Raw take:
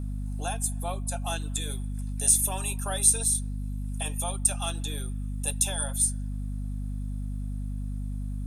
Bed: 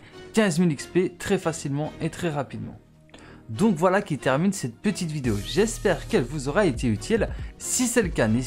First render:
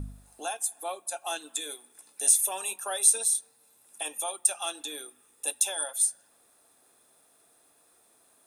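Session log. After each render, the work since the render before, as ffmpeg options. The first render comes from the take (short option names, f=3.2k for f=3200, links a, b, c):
-af "bandreject=f=50:t=h:w=4,bandreject=f=100:t=h:w=4,bandreject=f=150:t=h:w=4,bandreject=f=200:t=h:w=4,bandreject=f=250:t=h:w=4"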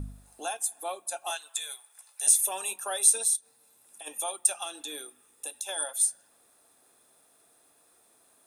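-filter_complex "[0:a]asettb=1/sr,asplit=3[a][b][c];[a]atrim=end=1.304[d];[b]atrim=start=1.3:end=2.27,asetpts=PTS-STARTPTS,afade=t=in:d=0.004:c=qsin,afade=t=out:st=0.966:d=0.004:c=qsin,highpass=f=680:w=0.5412,highpass=f=680:w=1.3066[e];[c]atrim=start=2.266[f];[d][e]acrossfade=d=0.004:c1=hsin:c2=qsin[g];[g][f]acrossfade=d=0.004:c1=qsin:c2=hsin,asplit=3[h][i][j];[h]afade=t=out:st=3.35:d=0.02[k];[i]acompressor=threshold=-46dB:ratio=2.5:attack=3.2:release=140:knee=1:detection=peak,afade=t=in:st=3.35:d=0.02,afade=t=out:st=4.06:d=0.02[l];[j]afade=t=in:st=4.06:d=0.02[m];[k][l][m]amix=inputs=3:normalize=0,asettb=1/sr,asplit=3[n][o][p];[n]atrim=end=4.634[q];[o]atrim=start=4.63:end=5.69,asetpts=PTS-STARTPTS,afade=t=in:d=0.004:c=qsin,afade=t=out:st=1.056:d=0.004:c=qsin,acompressor=threshold=-32dB:ratio=6:attack=3.2:release=140:knee=1:detection=peak[r];[p]atrim=start=5.686[s];[q][r]acrossfade=d=0.004:c1=hsin:c2=qsin[t];[t][s]acrossfade=d=0.004:c1=qsin:c2=hsin"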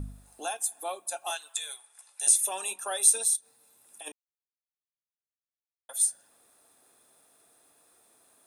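-filter_complex "[0:a]asettb=1/sr,asplit=3[a][b][c];[a]atrim=end=1.534[d];[b]atrim=start=1.53:end=2.99,asetpts=PTS-STARTPTS,afade=t=in:d=0.004:c=qsin,afade=t=out:st=1.456:d=0.004:c=qsin,lowpass=f=11k:w=0.5412,lowpass=f=11k:w=1.3066[e];[c]atrim=start=2.986[f];[d][e]acrossfade=d=0.004:c1=hsin:c2=qsin[g];[g][f]acrossfade=d=0.004:c1=qsin:c2=hsin,asplit=3[h][i][j];[h]atrim=end=4.12,asetpts=PTS-STARTPTS,afade=t=out:st=4.116:d=0.004:c=hsin[k];[i]atrim=start=4.12:end=5.89,asetpts=PTS-STARTPTS,volume=0[l];[j]atrim=start=5.89,asetpts=PTS-STARTPTS,afade=t=in:d=0.004:c=hsin[m];[k][l][m]concat=n=3:v=0:a=1"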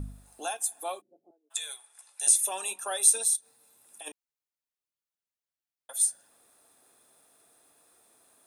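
-filter_complex "[0:a]asplit=3[a][b][c];[a]afade=t=out:st=1:d=0.02[d];[b]asuperpass=centerf=240:order=8:qfactor=0.91,afade=t=in:st=1:d=0.02,afade=t=out:st=1.5:d=0.02[e];[c]afade=t=in:st=1.5:d=0.02[f];[d][e][f]amix=inputs=3:normalize=0"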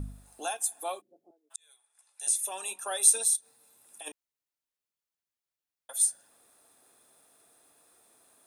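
-filter_complex "[0:a]asplit=2[a][b];[a]atrim=end=1.56,asetpts=PTS-STARTPTS,afade=t=out:st=1.556:d=0.004:c=hsin[c];[b]atrim=start=1.56,asetpts=PTS-STARTPTS,afade=t=in:d=1.52[d];[c][d]concat=n=2:v=0:a=1"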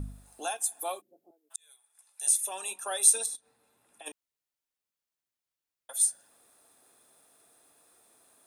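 -filter_complex "[0:a]asettb=1/sr,asplit=3[a][b][c];[a]atrim=end=0.794[d];[b]atrim=start=0.79:end=2.37,asetpts=PTS-STARTPTS,afade=t=in:d=0.004:c=qsin,afade=t=out:st=1.576:d=0.004:c=qsin,equalizer=f=14k:t=o:w=0.5:g=12.5[e];[c]atrim=start=2.366[f];[d][e]acrossfade=d=0.004:c1=hsin:c2=qsin[g];[g][f]acrossfade=d=0.004:c1=qsin:c2=hsin,asettb=1/sr,asplit=3[h][i][j];[h]atrim=end=3.264[k];[i]atrim=start=3.26:end=4.06,asetpts=PTS-STARTPTS,afade=t=in:d=0.004:c=qsin,afade=t=out:st=0.796:d=0.004:c=qsin,bass=f=250:g=3,treble=f=4k:g=-13[l];[j]atrim=start=4.056[m];[k][l]acrossfade=d=0.004:c1=hsin:c2=qsin[n];[n][m]acrossfade=d=0.004:c1=qsin:c2=hsin"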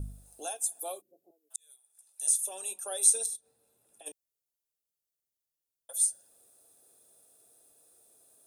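-filter_complex "[0:a]equalizer=f=250:t=o:w=1:g=-6,equalizer=f=500:t=o:w=1:g=3,equalizer=f=1k:t=o:w=1:g=-10,equalizer=f=2k:t=o:w=1:g=-10,equalizer=f=4k:t=o:w=1:g=-3,equalizer=f=16k:t=o:w=1:g=4,acrossover=split=9800[a][b];[b]acompressor=threshold=-37dB:ratio=4:attack=1:release=60[c];[a][c]amix=inputs=2:normalize=0"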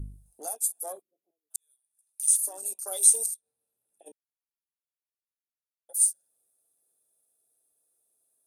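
-af "afwtdn=0.00501,equalizer=f=11k:w=1.8:g=9"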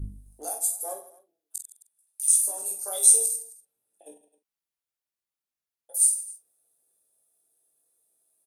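-filter_complex "[0:a]asplit=2[a][b];[b]adelay=44,volume=-11.5dB[c];[a][c]amix=inputs=2:normalize=0,aecho=1:1:20|50|95|162.5|263.8:0.631|0.398|0.251|0.158|0.1"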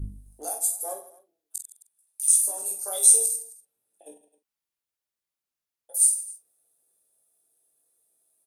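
-af "volume=1dB,alimiter=limit=-2dB:level=0:latency=1"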